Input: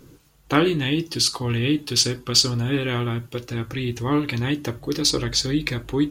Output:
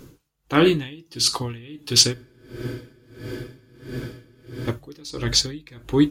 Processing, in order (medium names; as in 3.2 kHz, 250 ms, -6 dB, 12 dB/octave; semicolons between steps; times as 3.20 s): spectral freeze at 2.17 s, 2.50 s; logarithmic tremolo 1.5 Hz, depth 25 dB; trim +4.5 dB